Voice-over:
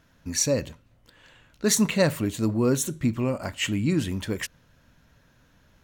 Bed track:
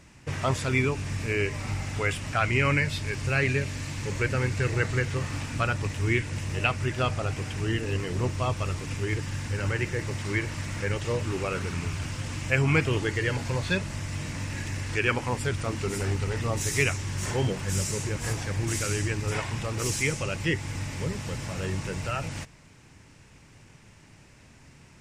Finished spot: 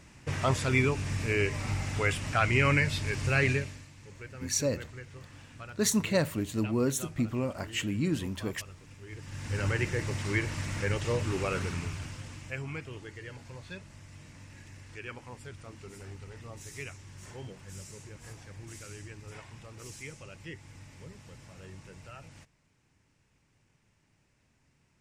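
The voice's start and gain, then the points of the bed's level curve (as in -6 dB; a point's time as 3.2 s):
4.15 s, -5.5 dB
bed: 3.52 s -1 dB
3.9 s -18.5 dB
9.04 s -18.5 dB
9.57 s -1.5 dB
11.62 s -1.5 dB
12.8 s -17 dB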